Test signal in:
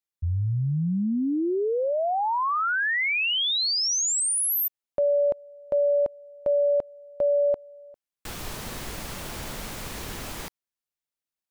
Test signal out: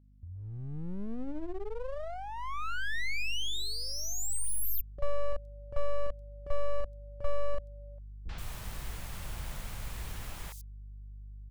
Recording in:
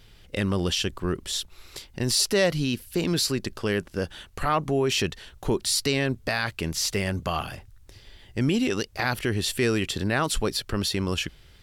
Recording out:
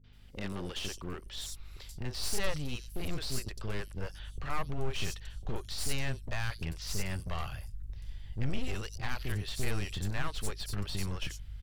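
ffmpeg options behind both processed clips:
ffmpeg -i in.wav -filter_complex "[0:a]acrossover=split=410|5100[link_01][link_02][link_03];[link_02]adelay=40[link_04];[link_03]adelay=130[link_05];[link_01][link_04][link_05]amix=inputs=3:normalize=0,adynamicequalizer=threshold=0.00891:dfrequency=810:dqfactor=1.8:tfrequency=810:tqfactor=1.8:attack=5:release=100:ratio=0.4:range=4:mode=cutabove:tftype=bell,acrossover=split=130|490|3600[link_06][link_07][link_08][link_09];[link_06]acompressor=threshold=-45dB:ratio=16:release=274:knee=1[link_10];[link_10][link_07][link_08][link_09]amix=inputs=4:normalize=0,aeval=exprs='clip(val(0),-1,0.0237)':channel_layout=same,aeval=exprs='val(0)+0.00282*(sin(2*PI*50*n/s)+sin(2*PI*2*50*n/s)/2+sin(2*PI*3*50*n/s)/3+sin(2*PI*4*50*n/s)/4+sin(2*PI*5*50*n/s)/5)':channel_layout=same,asubboost=boost=8.5:cutoff=88,volume=-8dB" out.wav

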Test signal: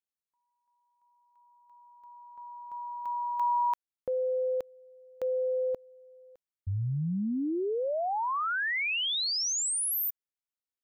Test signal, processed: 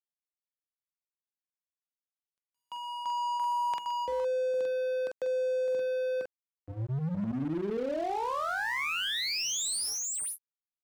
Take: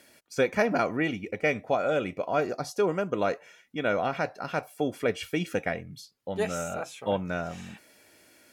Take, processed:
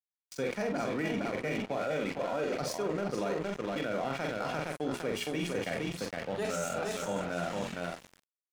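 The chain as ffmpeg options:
ffmpeg -i in.wav -filter_complex "[0:a]acrossover=split=390|5300[link_01][link_02][link_03];[link_02]alimiter=limit=-24dB:level=0:latency=1:release=34[link_04];[link_01][link_04][link_03]amix=inputs=3:normalize=0,asplit=2[link_05][link_06];[link_06]adelay=45,volume=-5.5dB[link_07];[link_05][link_07]amix=inputs=2:normalize=0,aresample=22050,aresample=44100,bandreject=frequency=60:width_type=h:width=6,bandreject=frequency=120:width_type=h:width=6,bandreject=frequency=180:width_type=h:width=6,bandreject=frequency=240:width_type=h:width=6,bandreject=frequency=300:width_type=h:width=6,bandreject=frequency=360:width_type=h:width=6,bandreject=frequency=420:width_type=h:width=6,aecho=1:1:463:0.501,acontrast=69,highpass=frequency=120:width=0.5412,highpass=frequency=120:width=1.3066,aeval=exprs='sgn(val(0))*max(abs(val(0))-0.0188,0)':channel_layout=same,areverse,acompressor=threshold=-30dB:ratio=6:attack=1.7:release=59:knee=6:detection=rms,areverse,volume=1.5dB" out.wav

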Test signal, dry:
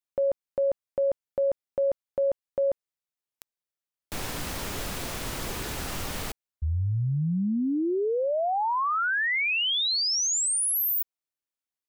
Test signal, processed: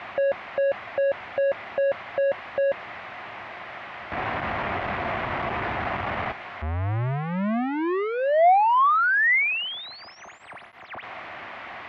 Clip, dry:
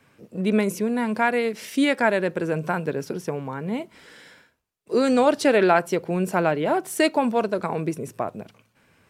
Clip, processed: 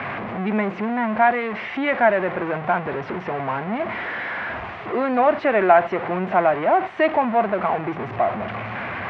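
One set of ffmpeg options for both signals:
ffmpeg -i in.wav -af "aeval=exprs='val(0)+0.5*0.0944*sgn(val(0))':channel_layout=same,highpass=100,equalizer=frequency=160:width_type=q:width=4:gain=-8,equalizer=frequency=280:width_type=q:width=4:gain=-6,equalizer=frequency=460:width_type=q:width=4:gain=-7,equalizer=frequency=710:width_type=q:width=4:gain=8,equalizer=frequency=1100:width_type=q:width=4:gain=4,equalizer=frequency=2000:width_type=q:width=4:gain=4,lowpass=frequency=2400:width=0.5412,lowpass=frequency=2400:width=1.3066,volume=-1.5dB" out.wav

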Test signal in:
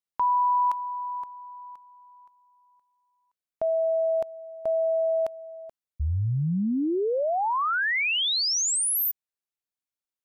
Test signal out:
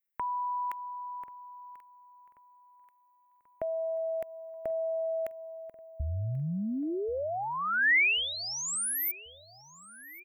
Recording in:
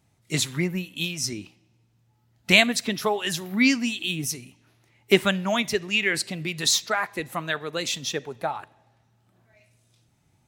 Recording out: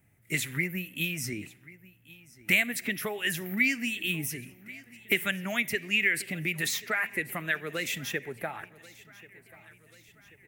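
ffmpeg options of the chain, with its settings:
ffmpeg -i in.wav -filter_complex "[0:a]equalizer=frequency=1000:width_type=o:width=1:gain=-9,equalizer=frequency=2000:width_type=o:width=1:gain=11,equalizer=frequency=4000:width_type=o:width=1:gain=-12,equalizer=frequency=8000:width_type=o:width=1:gain=-8,acrossover=split=1900|6200[link_01][link_02][link_03];[link_01]acompressor=threshold=-32dB:ratio=4[link_04];[link_02]acompressor=threshold=-24dB:ratio=4[link_05];[link_03]acompressor=threshold=-44dB:ratio=4[link_06];[link_04][link_05][link_06]amix=inputs=3:normalize=0,acrossover=split=490[link_07][link_08];[link_08]aexciter=amount=1.9:drive=8.3:freq=7700[link_09];[link_07][link_09]amix=inputs=2:normalize=0,aecho=1:1:1086|2172|3258|4344:0.0891|0.0481|0.026|0.014" out.wav

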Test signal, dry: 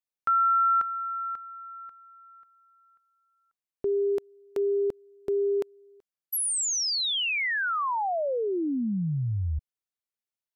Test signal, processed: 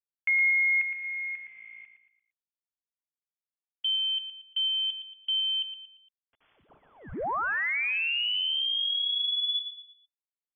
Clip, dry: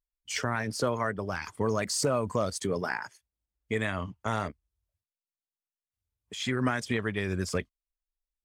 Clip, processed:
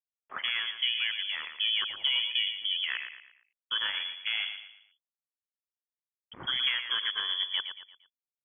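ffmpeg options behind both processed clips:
ffmpeg -i in.wav -af "afwtdn=0.0141,aresample=16000,aeval=exprs='val(0)*gte(abs(val(0)),0.00266)':channel_layout=same,aresample=44100,lowpass=frequency=3000:width_type=q:width=0.5098,lowpass=frequency=3000:width_type=q:width=0.6013,lowpass=frequency=3000:width_type=q:width=0.9,lowpass=frequency=3000:width_type=q:width=2.563,afreqshift=-3500,aecho=1:1:115|230|345|460:0.376|0.143|0.0543|0.0206,volume=-1.5dB" out.wav

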